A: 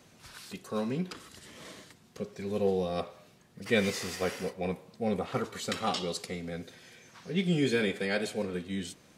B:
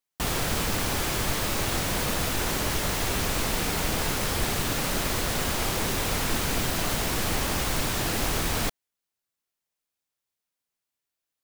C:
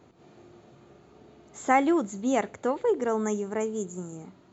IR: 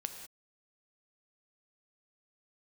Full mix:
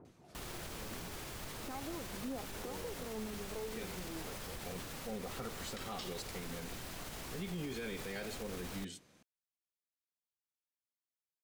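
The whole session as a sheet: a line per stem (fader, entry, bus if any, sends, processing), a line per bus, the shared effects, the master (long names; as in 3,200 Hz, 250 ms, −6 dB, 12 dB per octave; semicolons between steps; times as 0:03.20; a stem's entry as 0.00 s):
−7.5 dB, 0.05 s, no send, automatic ducking −14 dB, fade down 0.55 s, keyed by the third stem
−16.5 dB, 0.15 s, no send, pitch vibrato 9.6 Hz 54 cents; brickwall limiter −19 dBFS, peak gain reduction 5.5 dB
−6.0 dB, 0.00 s, no send, low-pass filter 1,200 Hz 12 dB per octave; downward compressor 4 to 1, threshold −36 dBFS, peak gain reduction 15 dB; phase shifter 0.63 Hz, delay 4 ms, feedback 52%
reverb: not used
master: brickwall limiter −33 dBFS, peak gain reduction 10 dB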